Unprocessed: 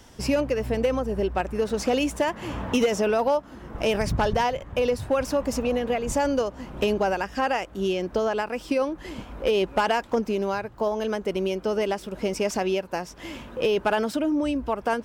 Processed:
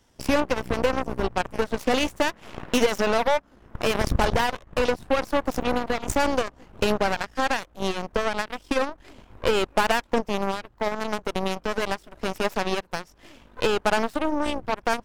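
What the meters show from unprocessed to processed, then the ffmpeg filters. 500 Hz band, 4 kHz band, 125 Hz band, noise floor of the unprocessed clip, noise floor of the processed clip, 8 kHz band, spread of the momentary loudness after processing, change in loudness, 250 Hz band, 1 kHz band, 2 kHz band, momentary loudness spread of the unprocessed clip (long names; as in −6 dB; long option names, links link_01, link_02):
−1.5 dB, +3.5 dB, −0.5 dB, −46 dBFS, −57 dBFS, +1.0 dB, 7 LU, 0.0 dB, −1.5 dB, +1.5 dB, +3.5 dB, 6 LU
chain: -af "asubboost=boost=2:cutoff=65,aeval=exprs='0.251*(cos(1*acos(clip(val(0)/0.251,-1,1)))-cos(1*PI/2))+0.0398*(cos(4*acos(clip(val(0)/0.251,-1,1)))-cos(4*PI/2))+0.0447*(cos(7*acos(clip(val(0)/0.251,-1,1)))-cos(7*PI/2))+0.00708*(cos(8*acos(clip(val(0)/0.251,-1,1)))-cos(8*PI/2))':channel_layout=same"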